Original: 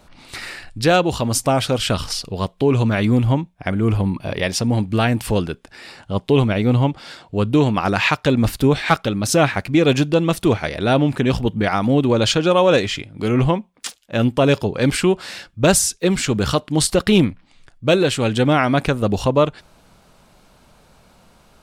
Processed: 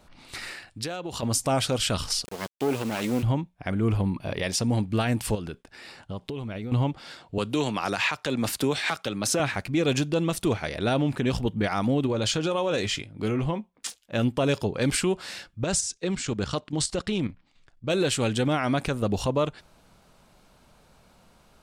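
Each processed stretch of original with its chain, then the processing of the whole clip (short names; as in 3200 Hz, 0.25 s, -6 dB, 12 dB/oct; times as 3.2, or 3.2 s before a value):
0.53–1.23 HPF 150 Hz 6 dB/oct + compressor 10:1, threshold -23 dBFS
2.25–3.23 minimum comb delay 0.39 ms + HPF 240 Hz + requantised 6-bit, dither none
5.35–6.72 expander -48 dBFS + compressor 12:1, threshold -23 dBFS
7.38–9.4 HPF 56 Hz + low shelf 220 Hz -11 dB + three-band squash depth 70%
12.06–14.01 compressor 5:1, threshold -16 dBFS + doubler 19 ms -14 dB + mismatched tape noise reduction decoder only
15.64–17.9 LPF 8400 Hz 24 dB/oct + level quantiser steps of 10 dB
whole clip: dynamic EQ 7800 Hz, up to +6 dB, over -38 dBFS, Q 0.75; limiter -9 dBFS; gain -6 dB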